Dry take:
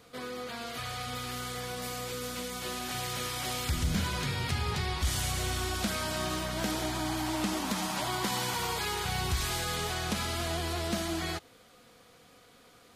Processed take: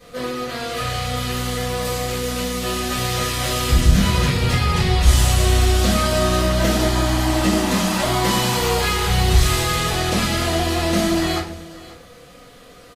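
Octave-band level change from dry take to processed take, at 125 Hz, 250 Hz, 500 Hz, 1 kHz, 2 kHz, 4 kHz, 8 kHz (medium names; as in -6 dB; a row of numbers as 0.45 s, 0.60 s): +16.0 dB, +14.5 dB, +15.0 dB, +12.0 dB, +11.0 dB, +11.5 dB, +11.0 dB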